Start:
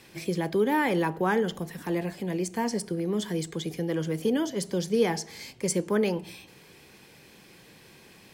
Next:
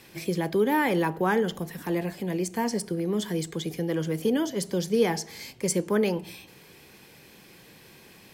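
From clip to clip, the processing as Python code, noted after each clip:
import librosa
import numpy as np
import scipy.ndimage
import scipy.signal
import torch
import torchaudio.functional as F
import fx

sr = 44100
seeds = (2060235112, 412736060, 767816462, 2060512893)

y = fx.peak_eq(x, sr, hz=13000.0, db=7.0, octaves=0.24)
y = F.gain(torch.from_numpy(y), 1.0).numpy()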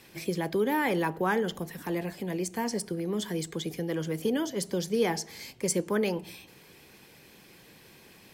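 y = fx.hpss(x, sr, part='harmonic', gain_db=-3)
y = F.gain(torch.from_numpy(y), -1.0).numpy()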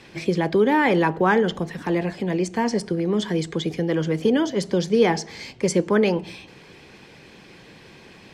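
y = fx.air_absorb(x, sr, metres=98.0)
y = F.gain(torch.from_numpy(y), 9.0).numpy()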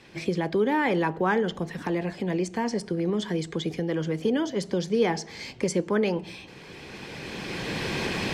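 y = fx.recorder_agc(x, sr, target_db=-13.0, rise_db_per_s=13.0, max_gain_db=30)
y = F.gain(torch.from_numpy(y), -5.5).numpy()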